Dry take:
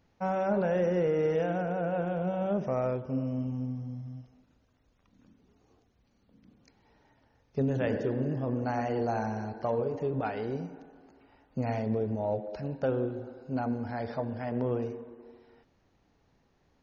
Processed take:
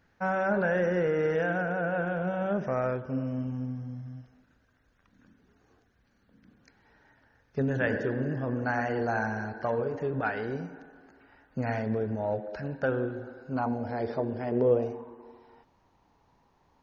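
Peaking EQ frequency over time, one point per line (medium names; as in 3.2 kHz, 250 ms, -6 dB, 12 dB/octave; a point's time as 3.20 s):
peaking EQ +12.5 dB 0.55 oct
13.47 s 1.6 kHz
14.01 s 380 Hz
14.56 s 380 Hz
15.03 s 950 Hz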